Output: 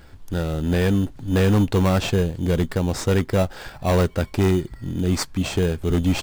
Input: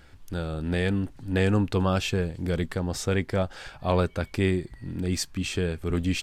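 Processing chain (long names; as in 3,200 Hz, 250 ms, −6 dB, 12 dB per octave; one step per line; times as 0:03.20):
notch filter 1,200 Hz, Q 28
in parallel at −4 dB: sample-rate reduction 3,300 Hz, jitter 0%
on the sum: hard clipping −15.5 dBFS, distortion −17 dB
level +2.5 dB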